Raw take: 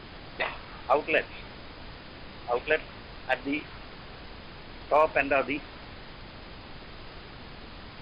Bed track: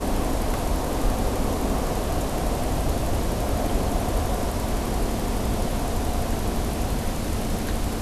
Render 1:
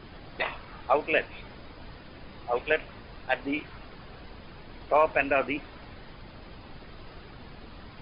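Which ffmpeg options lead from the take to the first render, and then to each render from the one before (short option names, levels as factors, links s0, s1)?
-af "afftdn=nr=7:nf=-46"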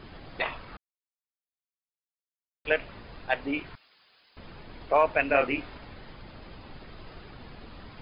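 -filter_complex "[0:a]asettb=1/sr,asplit=3[s0][s1][s2];[s0]atrim=end=3.754[s3];[s1]atrim=start=3.75:end=4.37,asetpts=PTS-STARTPTS,afade=t=in:d=0.004:c=qsin,afade=t=out:st=0.616:d=0.004:c=qsin,aderivative[s4];[s2]atrim=start=4.366[s5];[s3][s4]acrossfade=d=0.004:c1=hsin:c2=qsin[s6];[s6][s5]acrossfade=d=0.004:c1=qsin:c2=hsin,asettb=1/sr,asplit=3[s7][s8][s9];[s7]atrim=end=5.274[s10];[s8]atrim=start=5.27:end=5.78,asetpts=PTS-STARTPTS,afade=t=in:d=0.004:c=qsin,afade=t=out:st=0.506:d=0.004:c=qsin,asplit=2[s11][s12];[s12]adelay=28,volume=0.668[s13];[s11][s13]amix=inputs=2:normalize=0,atrim=end_sample=22491[s14];[s9]atrim=start=5.776[s15];[s10][s14]acrossfade=d=0.004:c1=hsin:c2=qsin[s16];[s16][s15]acrossfade=d=0.004:c1=qsin:c2=hsin,asplit=3[s17][s18][s19];[s17]atrim=end=0.77,asetpts=PTS-STARTPTS,afade=t=out:st=0.766:d=0.004:c=hsin[s20];[s18]atrim=start=0.77:end=2.65,asetpts=PTS-STARTPTS,volume=0[s21];[s19]atrim=start=2.65,asetpts=PTS-STARTPTS,afade=t=in:d=0.004:c=hsin[s22];[s20][s21][s22]concat=n=3:v=0:a=1"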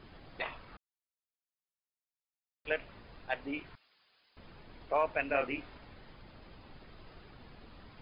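-af "volume=0.398"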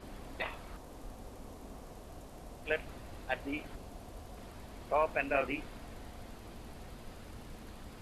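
-filter_complex "[1:a]volume=0.0596[s0];[0:a][s0]amix=inputs=2:normalize=0"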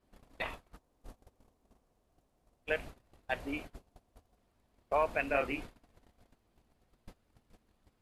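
-af "agate=range=0.0562:threshold=0.00708:ratio=16:detection=peak"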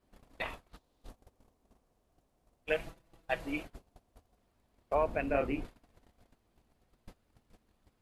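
-filter_complex "[0:a]asettb=1/sr,asplit=3[s0][s1][s2];[s0]atrim=end=0.694[s3];[s1]atrim=start=0.69:end=1.09,asetpts=PTS-STARTPTS,afade=t=in:d=0.004:c=qsin,afade=t=out:st=0.396:d=0.004:c=qsin,equalizer=f=3800:w=1.5:g=9[s4];[s2]atrim=start=1.086[s5];[s3][s4]acrossfade=d=0.004:c1=hsin:c2=qsin[s6];[s6][s5]acrossfade=d=0.004:c1=qsin:c2=hsin,asettb=1/sr,asplit=3[s7][s8][s9];[s7]atrim=end=2.694[s10];[s8]atrim=start=2.69:end=3.63,asetpts=PTS-STARTPTS,afade=t=in:d=0.004:c=qsin,afade=t=out:st=0.936:d=0.004:c=qsin,aecho=1:1:6.1:0.65,atrim=end_sample=41454[s11];[s9]atrim=start=3.626[s12];[s10][s11]acrossfade=d=0.004:c1=hsin:c2=qsin[s13];[s13][s12]acrossfade=d=0.004:c1=qsin:c2=hsin,asettb=1/sr,asplit=3[s14][s15][s16];[s14]atrim=end=4.944[s17];[s15]atrim=start=4.94:end=5.65,asetpts=PTS-STARTPTS,afade=t=in:d=0.004:c=qsin,afade=t=out:st=0.706:d=0.004:c=qsin,tiltshelf=f=710:g=6.5[s18];[s16]atrim=start=5.646[s19];[s17][s18]acrossfade=d=0.004:c1=hsin:c2=qsin[s20];[s20][s19]acrossfade=d=0.004:c1=qsin:c2=hsin"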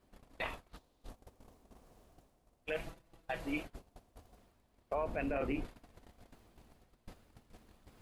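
-af "alimiter=level_in=1.41:limit=0.0631:level=0:latency=1:release=15,volume=0.708,areverse,acompressor=mode=upward:threshold=0.00316:ratio=2.5,areverse"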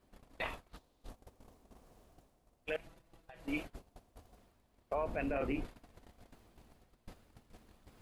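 -filter_complex "[0:a]asettb=1/sr,asplit=3[s0][s1][s2];[s0]atrim=end=2.764[s3];[s1]atrim=start=2.76:end=3.48,asetpts=PTS-STARTPTS,afade=t=in:d=0.004:c=qsin,afade=t=out:st=0.716:d=0.004:c=qsin,acompressor=threshold=0.00251:ratio=6:attack=3.2:release=140:knee=1:detection=peak[s4];[s2]atrim=start=3.476[s5];[s3][s4]acrossfade=d=0.004:c1=hsin:c2=qsin[s6];[s6][s5]acrossfade=d=0.004:c1=qsin:c2=hsin"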